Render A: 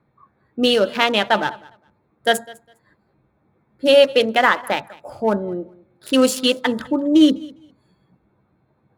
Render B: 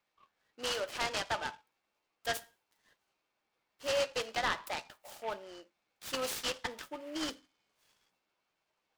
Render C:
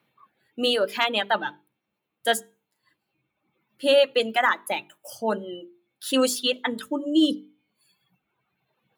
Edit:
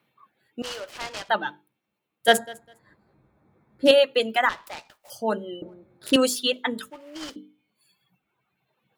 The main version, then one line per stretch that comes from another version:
C
0.62–1.29 from B
2.28–3.91 from A
4.49–5.1 from B
5.62–6.16 from A
6.9–7.36 from B

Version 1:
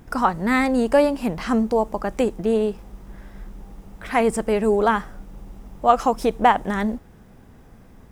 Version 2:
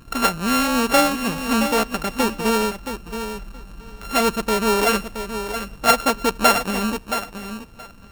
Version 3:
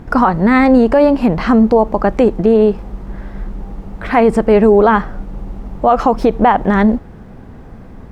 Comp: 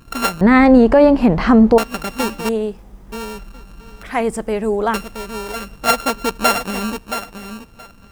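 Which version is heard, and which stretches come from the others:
2
0.41–1.78 from 3
2.49–3.12 from 1
4.03–4.94 from 1

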